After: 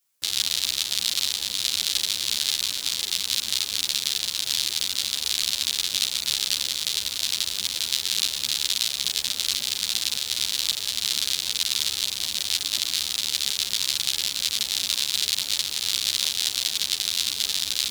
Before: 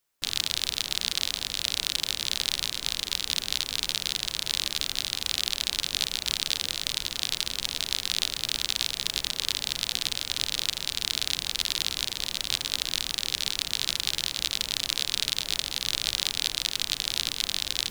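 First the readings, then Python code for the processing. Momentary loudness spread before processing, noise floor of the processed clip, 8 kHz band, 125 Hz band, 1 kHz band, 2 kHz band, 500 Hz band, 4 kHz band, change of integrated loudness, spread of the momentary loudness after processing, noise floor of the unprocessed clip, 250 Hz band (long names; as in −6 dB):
2 LU, −34 dBFS, +6.0 dB, can't be measured, −1.5 dB, +1.0 dB, −3.0 dB, +3.5 dB, +4.0 dB, 2 LU, −44 dBFS, −2.5 dB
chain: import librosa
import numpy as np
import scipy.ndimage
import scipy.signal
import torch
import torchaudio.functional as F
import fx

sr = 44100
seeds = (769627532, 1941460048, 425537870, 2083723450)

y = scipy.signal.sosfilt(scipy.signal.butter(2, 55.0, 'highpass', fs=sr, output='sos'), x)
y = fx.high_shelf(y, sr, hz=3100.0, db=10.5)
y = fx.ensemble(y, sr)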